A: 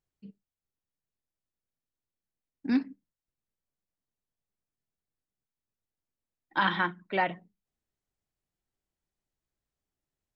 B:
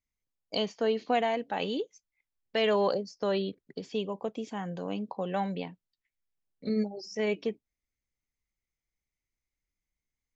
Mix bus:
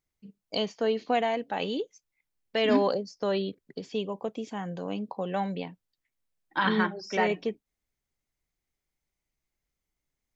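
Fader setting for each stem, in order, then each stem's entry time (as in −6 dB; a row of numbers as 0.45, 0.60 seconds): −0.5, +1.0 decibels; 0.00, 0.00 seconds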